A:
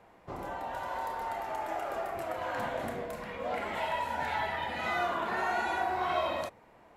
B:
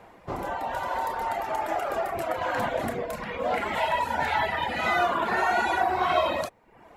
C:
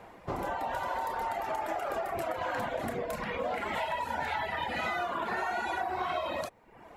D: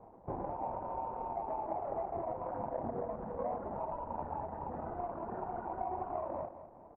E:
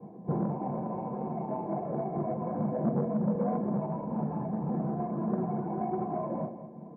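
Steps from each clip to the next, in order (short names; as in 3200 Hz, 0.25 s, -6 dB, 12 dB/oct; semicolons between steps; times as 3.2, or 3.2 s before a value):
reverb removal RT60 0.66 s; gain +8.5 dB
compressor, threshold -30 dBFS, peak gain reduction 11.5 dB
median filter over 41 samples; ladder low-pass 1100 Hz, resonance 55%; feedback echo 0.205 s, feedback 40%, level -12 dB; gain +6 dB
reverb RT60 0.25 s, pre-delay 3 ms, DRR -4 dB; core saturation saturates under 360 Hz; gain -9 dB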